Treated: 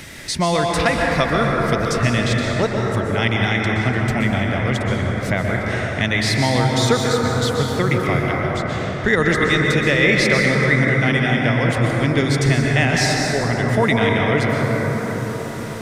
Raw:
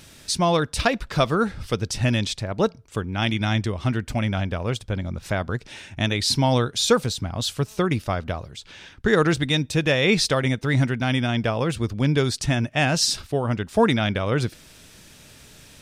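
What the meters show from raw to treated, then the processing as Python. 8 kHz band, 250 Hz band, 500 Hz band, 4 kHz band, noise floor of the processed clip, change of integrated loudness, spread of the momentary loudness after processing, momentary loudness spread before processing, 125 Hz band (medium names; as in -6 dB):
+1.0 dB, +4.5 dB, +4.5 dB, +1.5 dB, -26 dBFS, +5.0 dB, 6 LU, 9 LU, +5.0 dB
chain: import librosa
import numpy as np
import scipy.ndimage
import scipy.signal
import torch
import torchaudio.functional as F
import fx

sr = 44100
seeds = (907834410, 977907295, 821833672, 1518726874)

y = fx.peak_eq(x, sr, hz=2000.0, db=13.0, octaves=0.24)
y = fx.rev_plate(y, sr, seeds[0], rt60_s=4.8, hf_ratio=0.25, predelay_ms=110, drr_db=-1.5)
y = fx.band_squash(y, sr, depth_pct=40)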